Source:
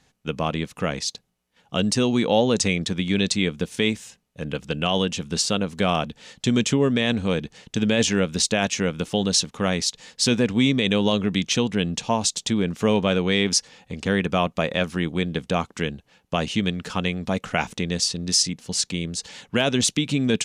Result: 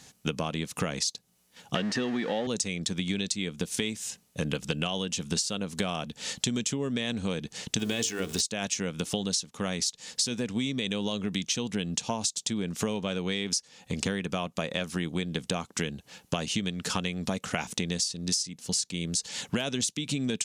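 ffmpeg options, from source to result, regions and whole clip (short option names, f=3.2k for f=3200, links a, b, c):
-filter_complex "[0:a]asettb=1/sr,asplit=3[a][b][c];[a]atrim=end=1.754[d];[b]atrim=start=1.75:end=2.47,asetpts=PTS-STARTPTS,afade=t=in:d=0.004:c=qsin,afade=t=out:st=0.716:d=0.004:c=qsin,aeval=exprs='val(0)+0.5*0.0596*sgn(val(0))':c=same,highpass=170,lowpass=2.9k,equalizer=f=1.8k:w=5.3:g=13[e];[c]atrim=start=2.466[f];[d][e]acrossfade=d=0.004:c1=hsin:c2=qsin[g];[g][f]acrossfade=d=0.004:c1=qsin:c2=hsin,asettb=1/sr,asplit=3[h][i][j];[h]atrim=end=7.794[k];[i]atrim=start=7.79:end=8.41,asetpts=PTS-STARTPTS,afade=t=in:d=0.004:c=qsin,afade=t=out:st=0.616:d=0.004:c=qsin,aeval=exprs='val(0)+0.5*0.0188*sgn(val(0))':c=same,bandreject=f=50:t=h:w=6,bandreject=f=100:t=h:w=6,bandreject=f=150:t=h:w=6,bandreject=f=200:t=h:w=6,bandreject=f=250:t=h:w=6,bandreject=f=300:t=h:w=6,bandreject=f=350:t=h:w=6,bandreject=f=400:t=h:w=6,bandreject=f=450:t=h:w=6,aecho=1:1:2.7:0.41,atrim=end_sample=27342[l];[j]atrim=start=8.406[m];[k][l]acrossfade=d=0.004:c1=hsin:c2=qsin[n];[n][m]acrossfade=d=0.004:c1=qsin:c2=hsin,highpass=f=170:p=1,bass=f=250:g=5,treble=f=4k:g=10,acompressor=threshold=-32dB:ratio=20,volume=6dB"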